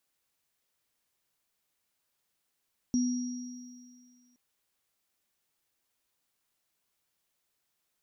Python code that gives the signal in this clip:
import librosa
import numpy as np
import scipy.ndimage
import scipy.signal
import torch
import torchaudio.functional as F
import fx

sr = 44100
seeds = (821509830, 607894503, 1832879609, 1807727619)

y = fx.additive_free(sr, length_s=1.42, hz=247.0, level_db=-23.0, upper_db=(-13.0,), decay_s=1.99, upper_decays_s=(2.46,), upper_hz=(5690.0,))